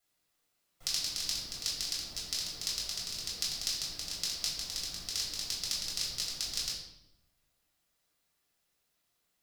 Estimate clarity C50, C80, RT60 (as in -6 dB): 3.0 dB, 6.5 dB, 0.85 s